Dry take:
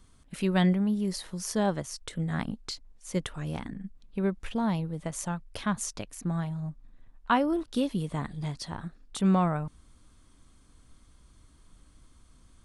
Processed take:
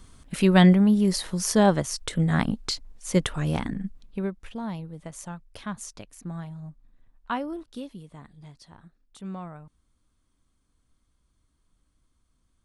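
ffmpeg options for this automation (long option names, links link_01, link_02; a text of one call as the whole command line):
ffmpeg -i in.wav -af "volume=8dB,afade=type=out:start_time=3.8:duration=0.53:silence=0.223872,afade=type=out:start_time=7.35:duration=0.69:silence=0.398107" out.wav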